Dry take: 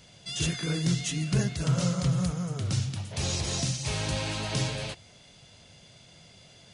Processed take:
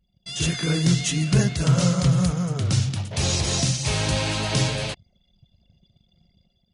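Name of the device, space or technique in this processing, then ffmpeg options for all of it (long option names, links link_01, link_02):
voice memo with heavy noise removal: -af "anlmdn=0.0398,dynaudnorm=framelen=170:gausssize=5:maxgain=7dB"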